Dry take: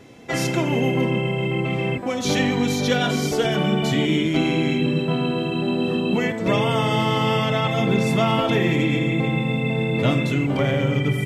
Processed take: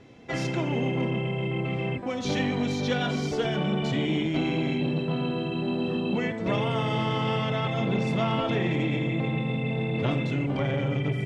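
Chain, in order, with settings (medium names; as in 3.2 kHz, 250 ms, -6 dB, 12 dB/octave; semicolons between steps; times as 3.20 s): low-pass 5.3 kHz 12 dB/octave; bass shelf 130 Hz +4.5 dB; transformer saturation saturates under 410 Hz; trim -6 dB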